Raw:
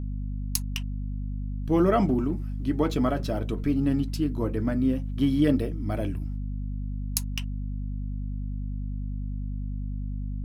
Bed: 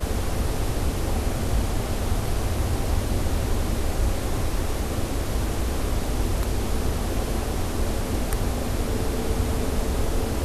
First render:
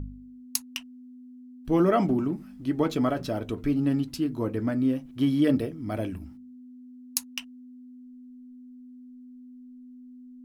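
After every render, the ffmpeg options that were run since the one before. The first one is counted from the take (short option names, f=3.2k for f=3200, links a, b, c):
-af "bandreject=f=50:t=h:w=4,bandreject=f=100:t=h:w=4,bandreject=f=150:t=h:w=4,bandreject=f=200:t=h:w=4"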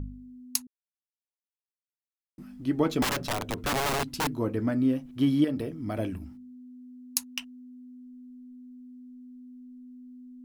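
-filter_complex "[0:a]asettb=1/sr,asplit=3[a][b][c];[a]atrim=end=3.024[d];[b]atrim=start=3.02:end=4.35,asetpts=PTS-STARTPTS,afade=t=in:d=0.004:c=qsin,afade=t=out:st=1.326:d=0.004:c=qsin,aeval=exprs='(mod(14.1*val(0)+1,2)-1)/14.1':c=same[e];[c]atrim=start=4.346[f];[d][e]acrossfade=d=0.004:c1=hsin:c2=qsin[g];[g][f]acrossfade=d=0.004:c1=qsin:c2=hsin,asettb=1/sr,asplit=3[h][i][j];[h]atrim=end=5.444[k];[i]atrim=start=5.44:end=5.98,asetpts=PTS-STARTPTS,afade=t=in:d=0.004:c=qsin,afade=t=out:st=0.536:d=0.004:c=qsin,acompressor=threshold=-26dB:ratio=6:attack=3.2:release=140:knee=1:detection=peak[l];[j]atrim=start=5.976[m];[k][l]acrossfade=d=0.004:c1=hsin:c2=qsin[n];[n][m]acrossfade=d=0.004:c1=qsin:c2=hsin,asplit=3[o][p][q];[o]atrim=end=0.67,asetpts=PTS-STARTPTS,afade=t=out:st=0.666:d=0.004:c=hsin[r];[p]atrim=start=0.67:end=2.38,asetpts=PTS-STARTPTS,volume=0[s];[q]atrim=start=2.38,asetpts=PTS-STARTPTS,afade=t=in:d=0.004:c=hsin[t];[r][s][t]concat=n=3:v=0:a=1"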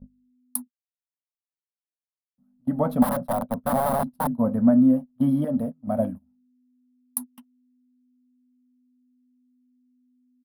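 -af "agate=range=-29dB:threshold=-32dB:ratio=16:detection=peak,firequalizer=gain_entry='entry(110,0);entry(240,14);entry(340,-20);entry(550,11);entry(2500,-19);entry(3700,-13);entry(6800,-22);entry(9700,3)':delay=0.05:min_phase=1"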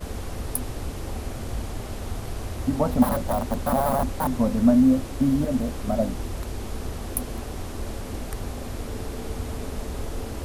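-filter_complex "[1:a]volume=-7dB[a];[0:a][a]amix=inputs=2:normalize=0"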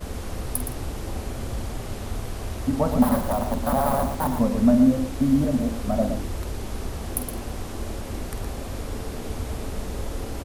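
-filter_complex "[0:a]asplit=2[a][b];[b]adelay=48,volume=-12dB[c];[a][c]amix=inputs=2:normalize=0,asplit=2[d][e];[e]aecho=0:1:117:0.398[f];[d][f]amix=inputs=2:normalize=0"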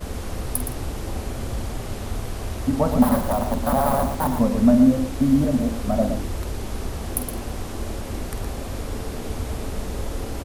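-af "volume=2dB"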